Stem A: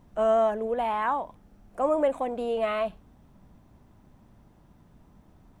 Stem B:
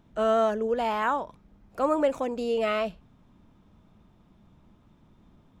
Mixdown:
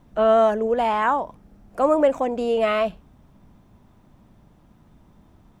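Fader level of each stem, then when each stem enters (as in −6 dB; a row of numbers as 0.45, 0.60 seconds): +1.5, −1.0 decibels; 0.00, 0.00 seconds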